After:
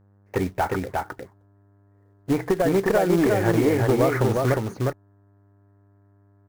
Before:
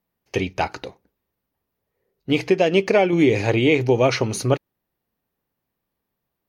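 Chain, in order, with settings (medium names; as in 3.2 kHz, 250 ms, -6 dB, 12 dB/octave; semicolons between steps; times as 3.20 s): FFT filter 470 Hz 0 dB, 1.8 kHz +7 dB, 3.1 kHz -20 dB; compression 10:1, threshold -17 dBFS, peak gain reduction 7.5 dB; one-sided clip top -17 dBFS; touch-sensitive phaser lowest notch 150 Hz, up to 3.5 kHz, full sweep at -23 dBFS; short-mantissa float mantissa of 2-bit; mains buzz 100 Hz, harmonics 17, -59 dBFS -8 dB/octave; on a send: delay 357 ms -3 dB; on the sum: trim +1.5 dB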